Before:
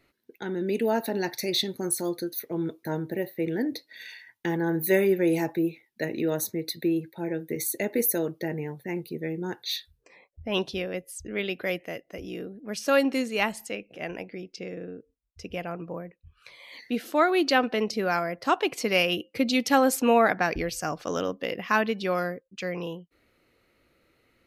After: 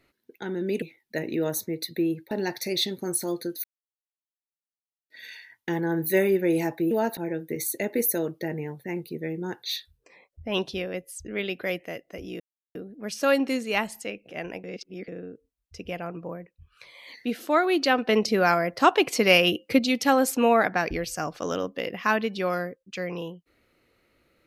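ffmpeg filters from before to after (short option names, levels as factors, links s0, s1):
-filter_complex "[0:a]asplit=12[s0][s1][s2][s3][s4][s5][s6][s7][s8][s9][s10][s11];[s0]atrim=end=0.822[s12];[s1]atrim=start=5.678:end=7.172[s13];[s2]atrim=start=1.078:end=2.41,asetpts=PTS-STARTPTS,afade=t=out:st=1.328:d=0.004:c=hsin[s14];[s3]atrim=start=2.41:end=3.87,asetpts=PTS-STARTPTS,volume=0[s15];[s4]atrim=start=3.87:end=5.682,asetpts=PTS-STARTPTS,afade=t=in:d=0.004:c=hsin[s16];[s5]atrim=start=0.818:end=1.082[s17];[s6]atrim=start=7.168:end=12.4,asetpts=PTS-STARTPTS,afade=t=out:st=5.228:d=0.004:c=hsin,apad=pad_dur=0.35[s18];[s7]atrim=start=12.4:end=14.292,asetpts=PTS-STARTPTS,afade=t=in:d=0.004:c=hsin[s19];[s8]atrim=start=14.288:end=14.732,asetpts=PTS-STARTPTS,areverse[s20];[s9]atrim=start=14.728:end=17.742[s21];[s10]atrim=start=17.738:end=19.442,asetpts=PTS-STARTPTS,volume=1.78[s22];[s11]atrim=start=19.438[s23];[s12][s13]acrossfade=d=0.004:c1=hsin:c2=hsin[s24];[s14][s15][s16]concat=n=3:v=0:a=1[s25];[s24][s25]acrossfade=d=0.004:c1=hsin:c2=hsin[s26];[s26][s17]acrossfade=d=0.004:c1=hsin:c2=hsin[s27];[s18][s19]concat=n=2:v=0:a=1[s28];[s27][s28]acrossfade=d=0.004:c1=hsin:c2=hsin[s29];[s29][s20]acrossfade=d=0.004:c1=hsin:c2=hsin[s30];[s30][s21]acrossfade=d=0.004:c1=hsin:c2=hsin[s31];[s31][s22]acrossfade=d=0.004:c1=hsin:c2=hsin[s32];[s32][s23]acrossfade=d=0.004:c1=hsin:c2=hsin"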